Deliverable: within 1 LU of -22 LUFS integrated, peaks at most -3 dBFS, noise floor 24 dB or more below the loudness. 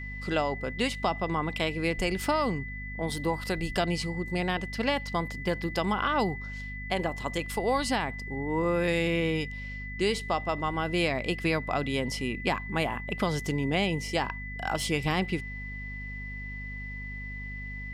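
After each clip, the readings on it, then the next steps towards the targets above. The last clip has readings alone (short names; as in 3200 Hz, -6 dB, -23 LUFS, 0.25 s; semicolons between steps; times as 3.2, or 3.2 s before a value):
hum 50 Hz; harmonics up to 250 Hz; hum level -37 dBFS; steady tone 2000 Hz; tone level -39 dBFS; loudness -30.0 LUFS; peak -14.5 dBFS; loudness target -22.0 LUFS
-> de-hum 50 Hz, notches 5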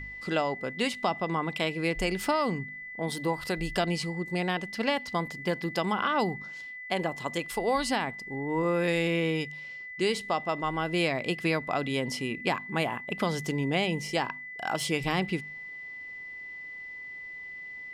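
hum none; steady tone 2000 Hz; tone level -39 dBFS
-> notch 2000 Hz, Q 30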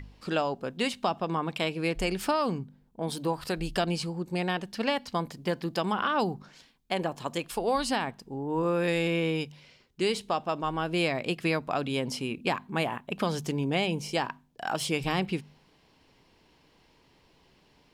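steady tone none; loudness -30.0 LUFS; peak -14.5 dBFS; loudness target -22.0 LUFS
-> gain +8 dB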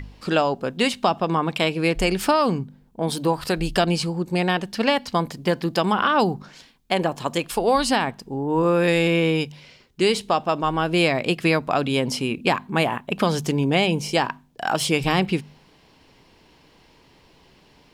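loudness -22.0 LUFS; peak -6.5 dBFS; noise floor -56 dBFS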